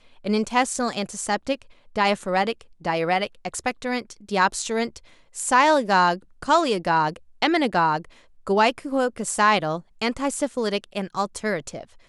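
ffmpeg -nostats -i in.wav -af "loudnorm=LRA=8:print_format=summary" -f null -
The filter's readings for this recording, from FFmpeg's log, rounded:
Input Integrated:    -23.6 LUFS
Input True Peak:      -5.1 dBTP
Input LRA:             3.5 LU
Input Threshold:     -33.8 LUFS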